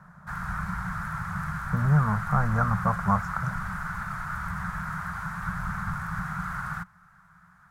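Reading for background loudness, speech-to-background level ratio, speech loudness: −33.0 LKFS, 6.5 dB, −26.5 LKFS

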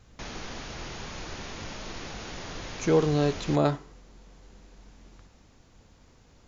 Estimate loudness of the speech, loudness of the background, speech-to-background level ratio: −26.0 LKFS, −39.0 LKFS, 13.0 dB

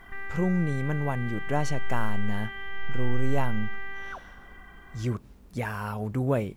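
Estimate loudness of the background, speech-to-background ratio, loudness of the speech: −38.0 LKFS, 7.0 dB, −31.0 LKFS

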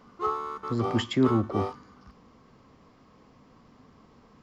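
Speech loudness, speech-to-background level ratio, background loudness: −28.0 LKFS, 5.5 dB, −33.5 LKFS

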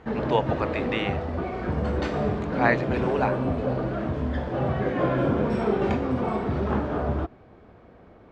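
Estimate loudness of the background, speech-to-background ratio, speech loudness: −27.0 LKFS, −1.0 dB, −28.0 LKFS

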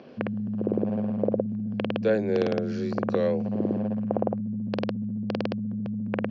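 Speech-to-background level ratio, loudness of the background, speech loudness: 1.0 dB, −29.5 LKFS, −28.5 LKFS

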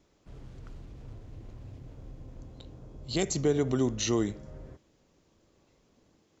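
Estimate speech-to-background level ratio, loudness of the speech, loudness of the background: 19.5 dB, −29.0 LKFS, −48.5 LKFS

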